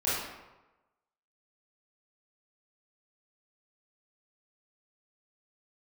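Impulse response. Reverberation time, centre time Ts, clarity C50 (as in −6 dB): 1.1 s, 83 ms, −1.5 dB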